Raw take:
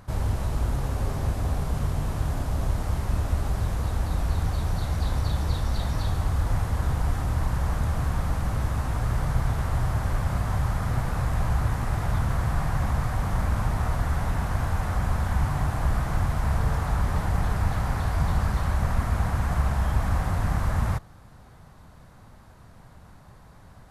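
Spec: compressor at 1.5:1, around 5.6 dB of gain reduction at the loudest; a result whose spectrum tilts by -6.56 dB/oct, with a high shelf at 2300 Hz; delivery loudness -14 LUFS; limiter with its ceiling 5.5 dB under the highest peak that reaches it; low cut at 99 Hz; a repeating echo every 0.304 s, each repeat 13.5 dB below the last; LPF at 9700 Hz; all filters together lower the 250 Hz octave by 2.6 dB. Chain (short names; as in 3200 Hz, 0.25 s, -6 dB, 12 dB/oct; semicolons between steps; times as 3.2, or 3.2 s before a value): HPF 99 Hz; LPF 9700 Hz; bell 250 Hz -3.5 dB; high shelf 2300 Hz -6.5 dB; compressor 1.5:1, threshold -41 dBFS; limiter -27.5 dBFS; feedback echo 0.304 s, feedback 21%, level -13.5 dB; gain +23.5 dB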